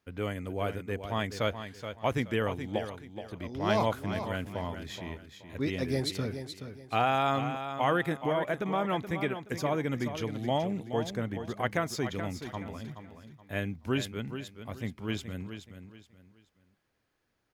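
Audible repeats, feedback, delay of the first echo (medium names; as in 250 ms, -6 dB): 3, 30%, 425 ms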